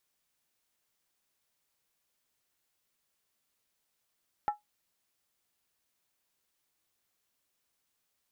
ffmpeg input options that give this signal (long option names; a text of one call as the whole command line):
ffmpeg -f lavfi -i "aevalsrc='0.0794*pow(10,-3*t/0.15)*sin(2*PI*834*t)+0.0224*pow(10,-3*t/0.119)*sin(2*PI*1329.4*t)+0.00631*pow(10,-3*t/0.103)*sin(2*PI*1781.4*t)+0.00178*pow(10,-3*t/0.099)*sin(2*PI*1914.9*t)+0.000501*pow(10,-3*t/0.092)*sin(2*PI*2212.6*t)':duration=0.63:sample_rate=44100" out.wav